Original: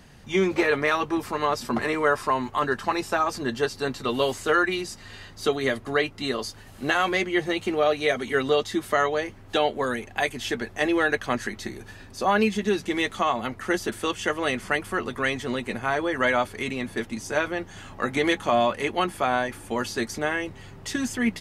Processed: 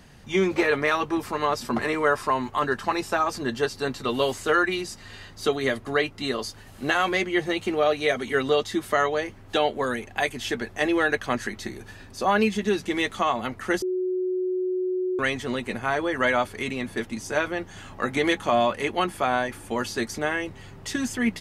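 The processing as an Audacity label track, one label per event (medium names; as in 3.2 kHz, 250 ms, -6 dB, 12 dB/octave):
13.820000	15.190000	bleep 368 Hz -23 dBFS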